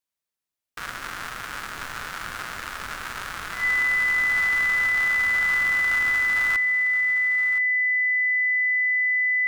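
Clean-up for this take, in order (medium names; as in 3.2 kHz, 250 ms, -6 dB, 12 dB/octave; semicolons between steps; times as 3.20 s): band-stop 2 kHz, Q 30; inverse comb 1020 ms -13 dB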